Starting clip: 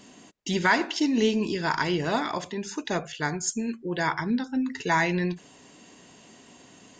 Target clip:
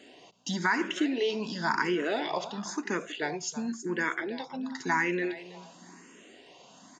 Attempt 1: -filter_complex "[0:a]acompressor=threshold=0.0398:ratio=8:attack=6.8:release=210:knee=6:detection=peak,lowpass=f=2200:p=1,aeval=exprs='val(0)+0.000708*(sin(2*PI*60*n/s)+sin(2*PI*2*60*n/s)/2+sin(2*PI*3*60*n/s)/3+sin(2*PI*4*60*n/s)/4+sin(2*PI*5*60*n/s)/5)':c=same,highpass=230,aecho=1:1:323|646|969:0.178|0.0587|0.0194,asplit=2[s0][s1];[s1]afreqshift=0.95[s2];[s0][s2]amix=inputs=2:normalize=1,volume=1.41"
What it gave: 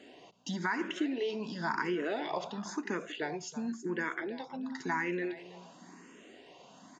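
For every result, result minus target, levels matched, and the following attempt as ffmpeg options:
compression: peak gain reduction +5 dB; 4 kHz band -2.0 dB
-filter_complex "[0:a]acompressor=threshold=0.0794:ratio=8:attack=6.8:release=210:knee=6:detection=peak,lowpass=f=2200:p=1,aeval=exprs='val(0)+0.000708*(sin(2*PI*60*n/s)+sin(2*PI*2*60*n/s)/2+sin(2*PI*3*60*n/s)/3+sin(2*PI*4*60*n/s)/4+sin(2*PI*5*60*n/s)/5)':c=same,highpass=230,aecho=1:1:323|646|969:0.178|0.0587|0.0194,asplit=2[s0][s1];[s1]afreqshift=0.95[s2];[s0][s2]amix=inputs=2:normalize=1,volume=1.41"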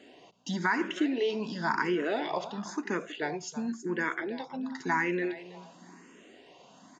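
4 kHz band -3.0 dB
-filter_complex "[0:a]acompressor=threshold=0.0794:ratio=8:attack=6.8:release=210:knee=6:detection=peak,lowpass=f=5600:p=1,aeval=exprs='val(0)+0.000708*(sin(2*PI*60*n/s)+sin(2*PI*2*60*n/s)/2+sin(2*PI*3*60*n/s)/3+sin(2*PI*4*60*n/s)/4+sin(2*PI*5*60*n/s)/5)':c=same,highpass=230,aecho=1:1:323|646|969:0.178|0.0587|0.0194,asplit=2[s0][s1];[s1]afreqshift=0.95[s2];[s0][s2]amix=inputs=2:normalize=1,volume=1.41"

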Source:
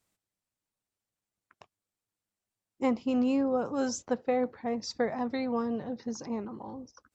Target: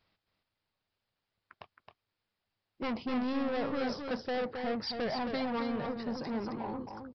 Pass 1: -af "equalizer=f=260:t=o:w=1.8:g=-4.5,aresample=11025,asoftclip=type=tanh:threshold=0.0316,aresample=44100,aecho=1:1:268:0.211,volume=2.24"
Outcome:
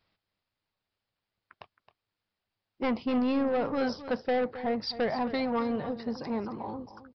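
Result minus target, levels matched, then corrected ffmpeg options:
echo-to-direct -7.5 dB; saturation: distortion -6 dB
-af "equalizer=f=260:t=o:w=1.8:g=-4.5,aresample=11025,asoftclip=type=tanh:threshold=0.0119,aresample=44100,aecho=1:1:268:0.501,volume=2.24"

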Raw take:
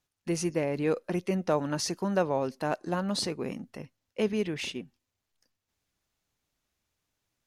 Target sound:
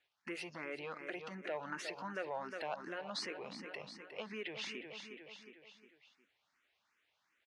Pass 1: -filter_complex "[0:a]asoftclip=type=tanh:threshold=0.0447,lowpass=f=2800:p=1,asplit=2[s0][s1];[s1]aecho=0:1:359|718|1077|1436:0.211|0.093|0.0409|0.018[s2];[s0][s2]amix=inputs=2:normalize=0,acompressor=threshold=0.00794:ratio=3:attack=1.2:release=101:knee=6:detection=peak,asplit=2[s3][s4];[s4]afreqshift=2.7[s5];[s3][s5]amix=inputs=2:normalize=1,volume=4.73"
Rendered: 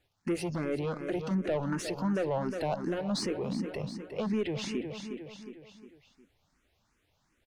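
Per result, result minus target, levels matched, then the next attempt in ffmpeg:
2 kHz band -10.0 dB; saturation: distortion +9 dB
-filter_complex "[0:a]asoftclip=type=tanh:threshold=0.0447,lowpass=f=2800:p=1,asplit=2[s0][s1];[s1]aecho=0:1:359|718|1077|1436:0.211|0.093|0.0409|0.018[s2];[s0][s2]amix=inputs=2:normalize=0,acompressor=threshold=0.00794:ratio=3:attack=1.2:release=101:knee=6:detection=peak,bandpass=f=2100:t=q:w=0.92:csg=0,asplit=2[s3][s4];[s4]afreqshift=2.7[s5];[s3][s5]amix=inputs=2:normalize=1,volume=4.73"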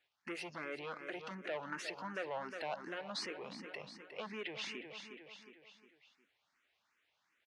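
saturation: distortion +9 dB
-filter_complex "[0:a]asoftclip=type=tanh:threshold=0.112,lowpass=f=2800:p=1,asplit=2[s0][s1];[s1]aecho=0:1:359|718|1077|1436:0.211|0.093|0.0409|0.018[s2];[s0][s2]amix=inputs=2:normalize=0,acompressor=threshold=0.00794:ratio=3:attack=1.2:release=101:knee=6:detection=peak,bandpass=f=2100:t=q:w=0.92:csg=0,asplit=2[s3][s4];[s4]afreqshift=2.7[s5];[s3][s5]amix=inputs=2:normalize=1,volume=4.73"

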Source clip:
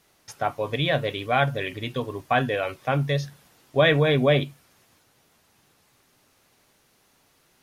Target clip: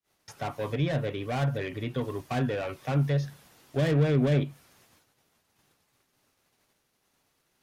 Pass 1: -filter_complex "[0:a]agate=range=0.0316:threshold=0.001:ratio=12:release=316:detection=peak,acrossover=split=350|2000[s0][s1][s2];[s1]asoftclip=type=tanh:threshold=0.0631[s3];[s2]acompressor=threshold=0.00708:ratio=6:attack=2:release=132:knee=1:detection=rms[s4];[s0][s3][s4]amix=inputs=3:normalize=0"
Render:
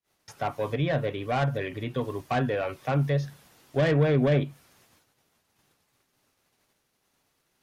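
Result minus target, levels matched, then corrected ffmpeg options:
saturation: distortion -5 dB
-filter_complex "[0:a]agate=range=0.0316:threshold=0.001:ratio=12:release=316:detection=peak,acrossover=split=350|2000[s0][s1][s2];[s1]asoftclip=type=tanh:threshold=0.0251[s3];[s2]acompressor=threshold=0.00708:ratio=6:attack=2:release=132:knee=1:detection=rms[s4];[s0][s3][s4]amix=inputs=3:normalize=0"

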